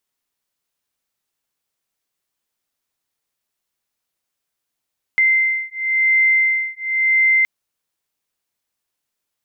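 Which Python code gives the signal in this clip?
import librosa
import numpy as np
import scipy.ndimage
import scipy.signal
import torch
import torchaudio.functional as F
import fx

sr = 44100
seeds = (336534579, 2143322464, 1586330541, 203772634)

y = fx.two_tone_beats(sr, length_s=2.27, hz=2080.0, beat_hz=0.95, level_db=-17.0)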